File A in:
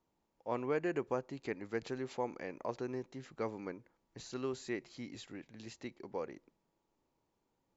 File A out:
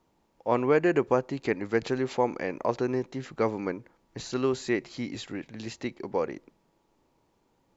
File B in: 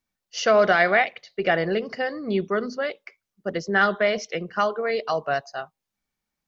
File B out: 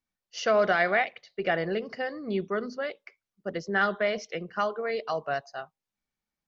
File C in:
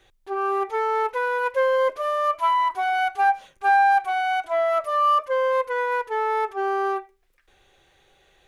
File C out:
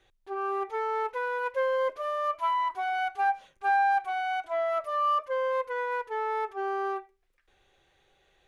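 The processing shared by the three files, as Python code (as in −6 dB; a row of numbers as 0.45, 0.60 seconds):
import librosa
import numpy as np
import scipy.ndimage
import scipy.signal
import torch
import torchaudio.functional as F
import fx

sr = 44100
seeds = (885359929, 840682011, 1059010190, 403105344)

y = fx.high_shelf(x, sr, hz=9000.0, db=-7.5)
y = y * 10.0 ** (-30 / 20.0) / np.sqrt(np.mean(np.square(y)))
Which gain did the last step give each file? +12.0, −5.5, −6.5 decibels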